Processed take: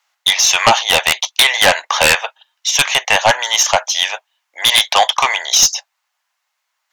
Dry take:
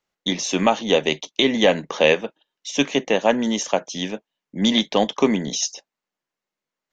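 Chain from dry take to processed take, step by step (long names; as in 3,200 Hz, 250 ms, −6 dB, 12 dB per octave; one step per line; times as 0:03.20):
stylus tracing distortion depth 0.024 ms
Butterworth high-pass 740 Hz 36 dB per octave
sine wavefolder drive 12 dB, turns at −3.5 dBFS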